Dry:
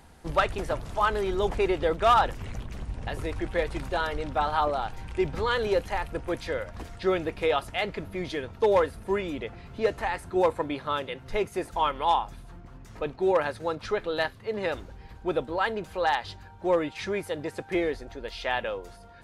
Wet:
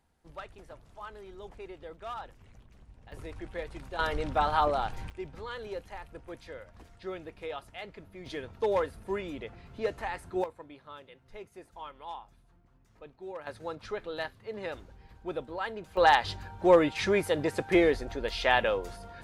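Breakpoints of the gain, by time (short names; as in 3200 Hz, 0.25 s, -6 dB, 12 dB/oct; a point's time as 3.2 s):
-19.5 dB
from 3.12 s -10.5 dB
from 3.99 s -0.5 dB
from 5.1 s -13.5 dB
from 8.26 s -6 dB
from 10.44 s -18 dB
from 13.47 s -8 dB
from 15.97 s +4 dB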